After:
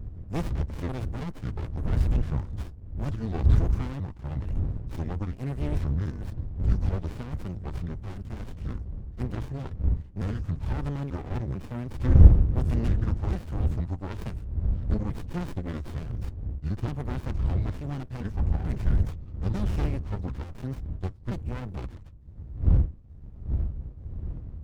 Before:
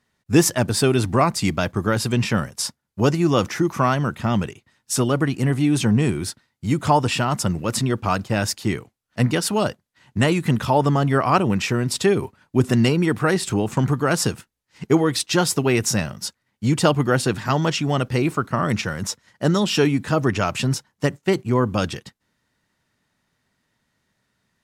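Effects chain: pitch shift switched off and on -7.5 st, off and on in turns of 444 ms; wind noise 87 Hz -18 dBFS; peaking EQ 69 Hz +6.5 dB 1.3 oct; sliding maximum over 65 samples; trim -12 dB

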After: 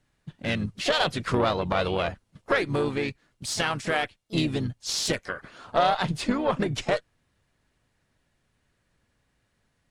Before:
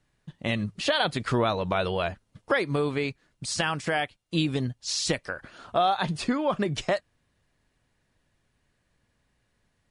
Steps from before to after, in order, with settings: harmony voices -4 st -8 dB, +4 st -16 dB; Chebyshev shaper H 4 -18 dB, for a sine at -9.5 dBFS

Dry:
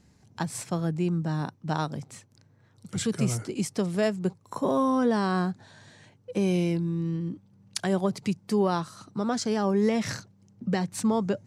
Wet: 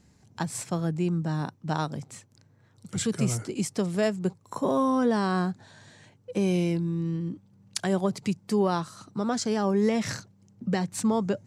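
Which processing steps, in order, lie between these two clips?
peaking EQ 7.4 kHz +3 dB 0.3 oct

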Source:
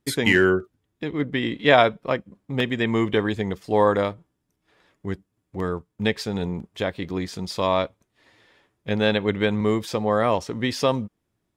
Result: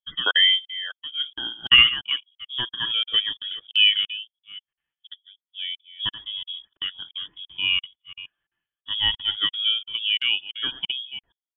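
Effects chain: chunks repeated in reverse 306 ms, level -10 dB; bass shelf 310 Hz -4.5 dB; frequency inversion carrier 3.5 kHz; crackling interface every 0.34 s, samples 2048, zero, from 0.31 s; spectral contrast expander 1.5:1; trim -1 dB

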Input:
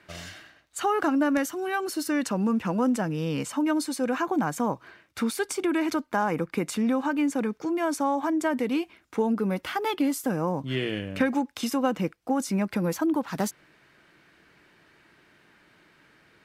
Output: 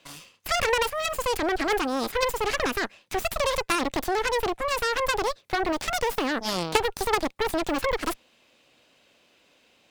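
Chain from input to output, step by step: Chebyshev shaper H 3 -8 dB, 5 -20 dB, 8 -20 dB, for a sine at -12.5 dBFS; wide varispeed 1.66×; trim +7.5 dB

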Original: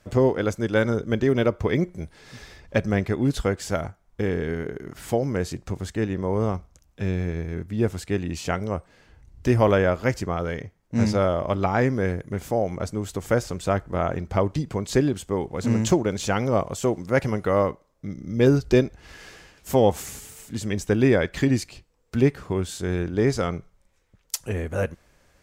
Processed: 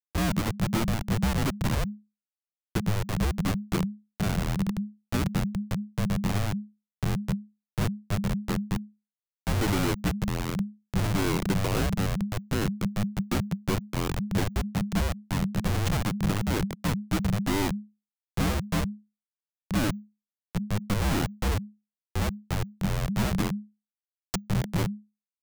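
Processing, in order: Schmitt trigger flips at -22.5 dBFS; frequency shift -210 Hz

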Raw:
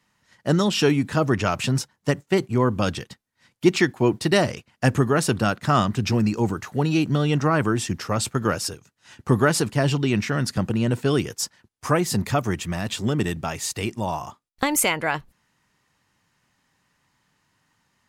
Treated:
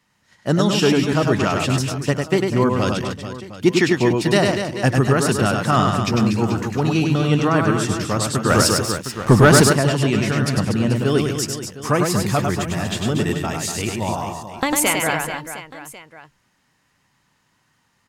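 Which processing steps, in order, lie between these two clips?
reverse bouncing-ball echo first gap 100 ms, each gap 1.4×, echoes 5; 8.50–9.73 s: waveshaping leveller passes 2; trim +1.5 dB

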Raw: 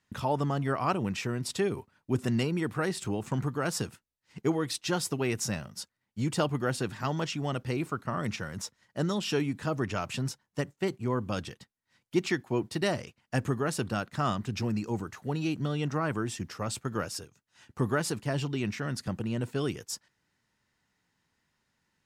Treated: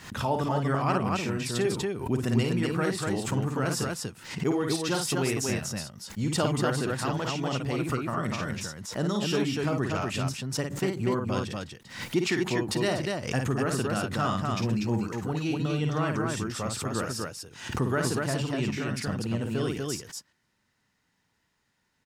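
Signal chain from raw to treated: loudspeakers at several distances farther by 18 m -5 dB, 83 m -3 dB; swell ahead of each attack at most 92 dB/s

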